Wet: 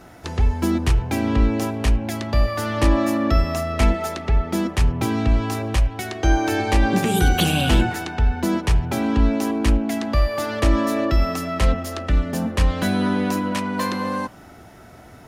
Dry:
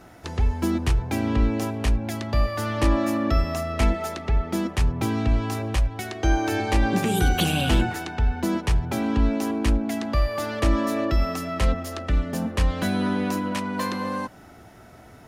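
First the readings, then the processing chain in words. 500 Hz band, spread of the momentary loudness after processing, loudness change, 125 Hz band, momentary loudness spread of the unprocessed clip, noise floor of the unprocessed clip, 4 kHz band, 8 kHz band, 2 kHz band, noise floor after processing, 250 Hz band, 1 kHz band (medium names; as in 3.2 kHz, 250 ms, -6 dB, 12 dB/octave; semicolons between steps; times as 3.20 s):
+3.5 dB, 5 LU, +3.5 dB, +3.0 dB, 5 LU, -48 dBFS, +3.5 dB, +3.5 dB, +3.5 dB, -44 dBFS, +3.0 dB, +3.5 dB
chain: de-hum 107.4 Hz, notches 30; trim +3.5 dB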